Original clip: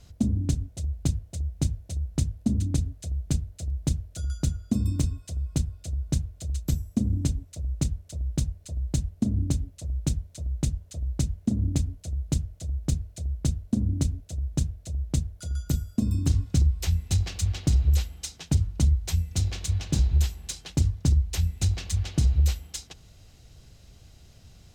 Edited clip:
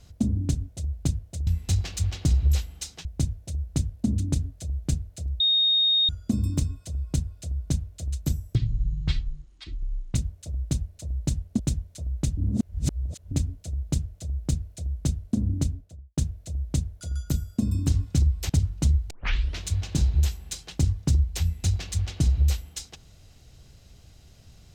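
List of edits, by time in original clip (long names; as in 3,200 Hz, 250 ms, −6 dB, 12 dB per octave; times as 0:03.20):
0:03.82–0:04.51: beep over 3,710 Hz −18 dBFS
0:06.97–0:07.82: play speed 53%
0:09.26–0:09.99: remove
0:10.77–0:11.71: reverse
0:13.97–0:14.57: fade out and dull
0:16.89–0:18.47: move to 0:01.47
0:19.08: tape start 0.52 s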